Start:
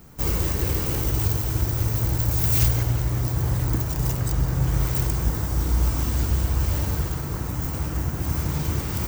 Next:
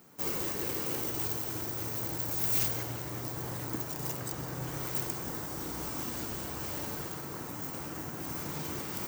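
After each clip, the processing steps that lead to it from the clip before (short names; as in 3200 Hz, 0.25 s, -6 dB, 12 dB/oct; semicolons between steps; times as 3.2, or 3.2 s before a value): HPF 230 Hz 12 dB/oct; gain -6 dB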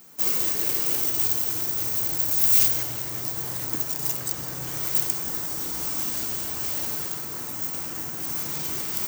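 high shelf 2300 Hz +11.5 dB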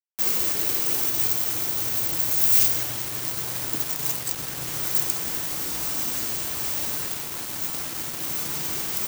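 bit-crush 5-bit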